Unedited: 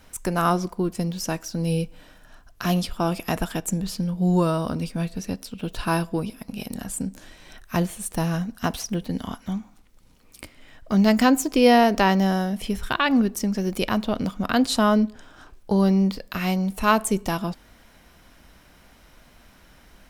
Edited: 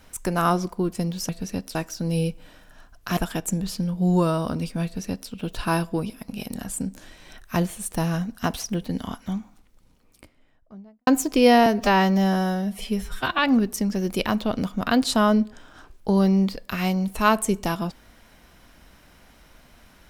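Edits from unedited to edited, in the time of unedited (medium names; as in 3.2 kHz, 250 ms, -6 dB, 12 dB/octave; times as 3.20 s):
2.71–3.37 s: delete
5.04–5.50 s: copy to 1.29 s
9.51–11.27 s: studio fade out
11.86–13.01 s: stretch 1.5×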